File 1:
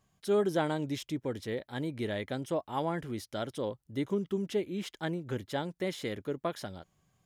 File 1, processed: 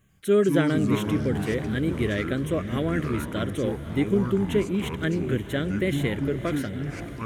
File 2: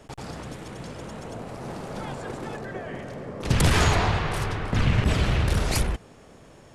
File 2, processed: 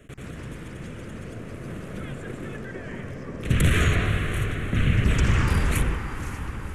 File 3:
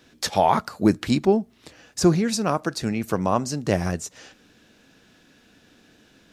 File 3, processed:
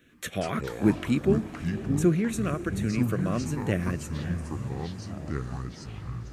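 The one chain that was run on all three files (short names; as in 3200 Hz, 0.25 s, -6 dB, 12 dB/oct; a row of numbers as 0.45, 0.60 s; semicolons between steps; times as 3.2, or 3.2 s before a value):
fixed phaser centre 2100 Hz, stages 4; echoes that change speed 92 ms, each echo -6 st, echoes 3, each echo -6 dB; diffused feedback echo 0.538 s, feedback 63%, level -14 dB; normalise peaks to -9 dBFS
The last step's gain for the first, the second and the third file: +10.0, +1.0, -3.0 dB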